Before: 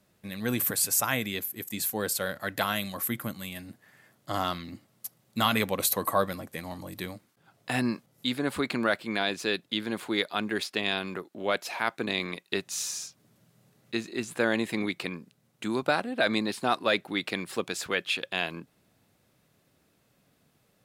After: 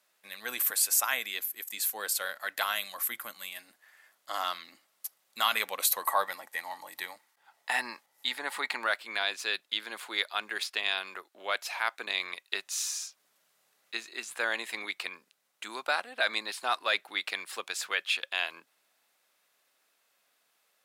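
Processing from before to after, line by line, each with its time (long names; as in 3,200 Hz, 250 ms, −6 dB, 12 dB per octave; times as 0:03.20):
0:06.02–0:08.85: hollow resonant body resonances 870/1,900 Hz, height 11 dB, ringing for 25 ms
whole clip: high-pass filter 900 Hz 12 dB per octave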